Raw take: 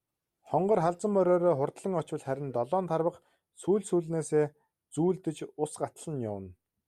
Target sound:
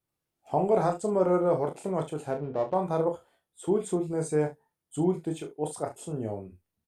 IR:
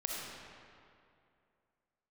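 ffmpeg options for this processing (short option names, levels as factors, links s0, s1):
-filter_complex "[0:a]asplit=3[s0][s1][s2];[s0]afade=t=out:st=2.31:d=0.02[s3];[s1]adynamicsmooth=sensitivity=8:basefreq=990,afade=t=in:st=2.31:d=0.02,afade=t=out:st=2.73:d=0.02[s4];[s2]afade=t=in:st=2.73:d=0.02[s5];[s3][s4][s5]amix=inputs=3:normalize=0,asplit=2[s6][s7];[s7]aecho=0:1:27|39|70:0.447|0.355|0.178[s8];[s6][s8]amix=inputs=2:normalize=0"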